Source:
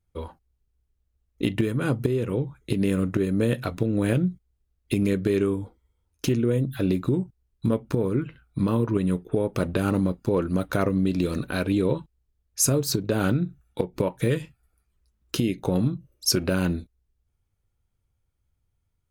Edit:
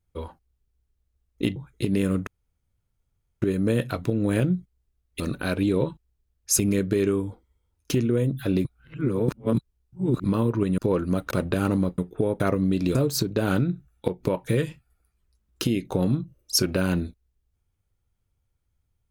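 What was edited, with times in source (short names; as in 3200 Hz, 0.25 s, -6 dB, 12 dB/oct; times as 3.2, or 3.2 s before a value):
1.56–2.44 cut
3.15 insert room tone 1.15 s
6.99–8.58 reverse
9.12–9.54 swap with 10.21–10.74
11.29–12.68 move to 4.93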